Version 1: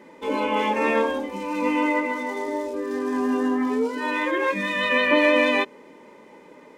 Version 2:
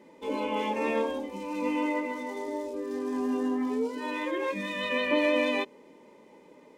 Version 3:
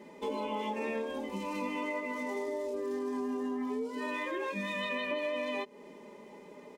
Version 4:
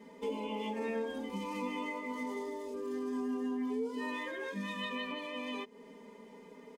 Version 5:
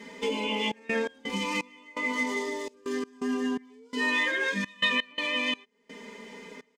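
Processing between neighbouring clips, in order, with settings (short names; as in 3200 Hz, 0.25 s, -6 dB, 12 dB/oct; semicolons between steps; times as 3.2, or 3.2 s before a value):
bell 1500 Hz -7.5 dB 1 oct; gain -5.5 dB
comb 4.9 ms, depth 51%; compressor 6:1, threshold -35 dBFS, peak gain reduction 14 dB; gain +2.5 dB
comb 4.3 ms, depth 91%; gain -5 dB
band shelf 3400 Hz +10 dB 2.8 oct; step gate "xxxx.x.xx.." 84 bpm -24 dB; gain +6.5 dB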